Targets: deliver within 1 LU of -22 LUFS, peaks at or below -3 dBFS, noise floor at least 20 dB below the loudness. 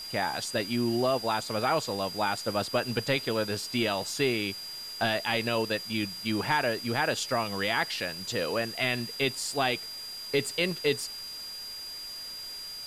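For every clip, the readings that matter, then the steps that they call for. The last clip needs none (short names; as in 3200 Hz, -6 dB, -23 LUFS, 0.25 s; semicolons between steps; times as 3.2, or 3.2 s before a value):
steady tone 4800 Hz; tone level -38 dBFS; noise floor -40 dBFS; noise floor target -50 dBFS; loudness -29.5 LUFS; peak -12.5 dBFS; loudness target -22.0 LUFS
-> notch 4800 Hz, Q 30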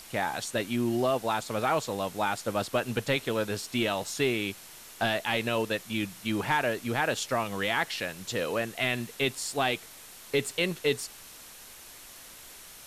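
steady tone none; noise floor -49 dBFS; noise floor target -50 dBFS
-> denoiser 6 dB, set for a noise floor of -49 dBFS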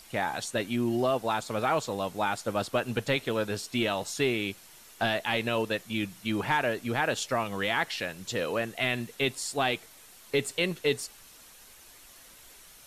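noise floor -53 dBFS; loudness -29.5 LUFS; peak -13.0 dBFS; loudness target -22.0 LUFS
-> gain +7.5 dB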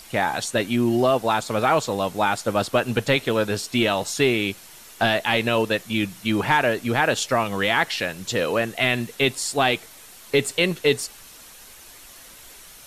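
loudness -22.0 LUFS; peak -5.5 dBFS; noise floor -45 dBFS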